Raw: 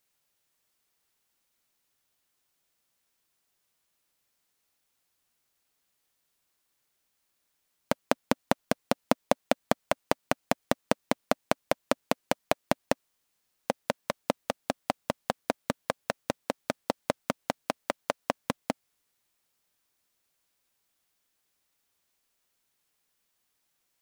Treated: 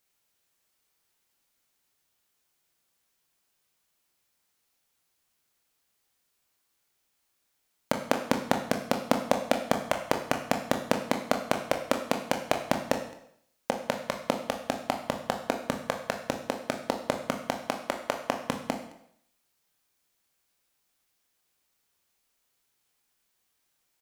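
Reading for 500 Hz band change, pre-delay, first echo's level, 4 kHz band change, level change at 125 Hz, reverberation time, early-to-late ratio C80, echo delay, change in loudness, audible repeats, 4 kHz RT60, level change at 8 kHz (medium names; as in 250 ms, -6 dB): +1.5 dB, 19 ms, -24.0 dB, +1.5 dB, +1.5 dB, 0.70 s, 10.5 dB, 215 ms, +1.5 dB, 1, 0.65 s, +1.5 dB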